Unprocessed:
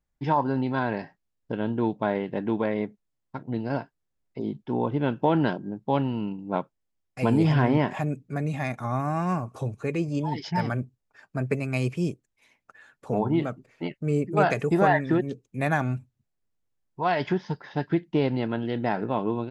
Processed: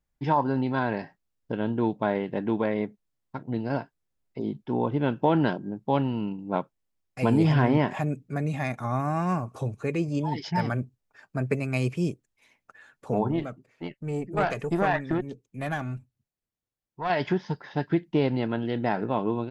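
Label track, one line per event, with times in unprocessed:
13.310000	17.100000	tube stage drive 13 dB, bias 0.75

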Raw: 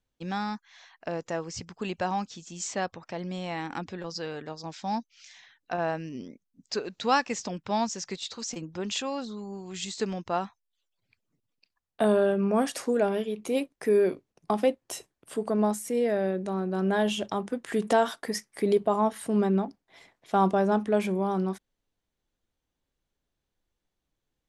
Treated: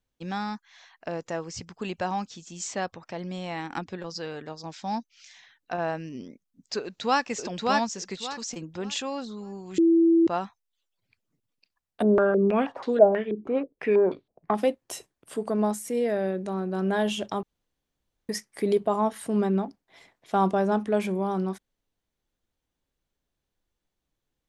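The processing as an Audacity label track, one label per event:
3.530000	4.040000	transient shaper attack +5 dB, sustain -4 dB
6.800000	7.250000	echo throw 0.58 s, feedback 25%, level -1 dB
9.780000	10.270000	bleep 332 Hz -15.5 dBFS
12.020000	14.550000	stepped low-pass 6.2 Hz 330–3800 Hz
17.430000	18.290000	room tone

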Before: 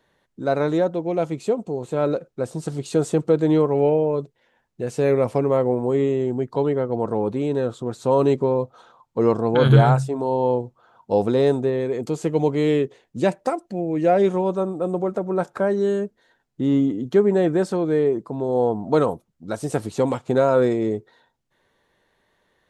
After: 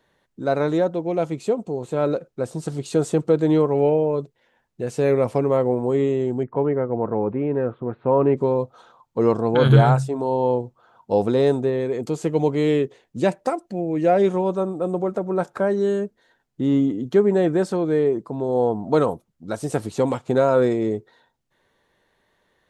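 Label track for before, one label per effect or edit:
6.430000	8.370000	steep low-pass 2400 Hz

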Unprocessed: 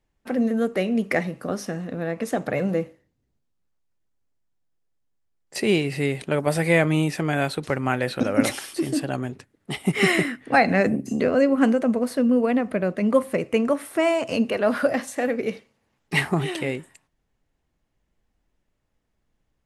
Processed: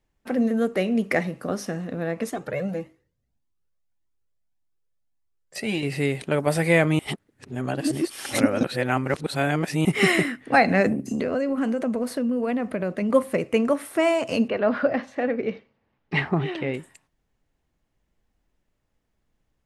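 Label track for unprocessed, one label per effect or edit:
2.300000	5.830000	cascading flanger rising 1.7 Hz
6.990000	9.850000	reverse
10.920000	13.100000	compressor, threshold -21 dBFS
14.480000	16.740000	air absorption 240 m

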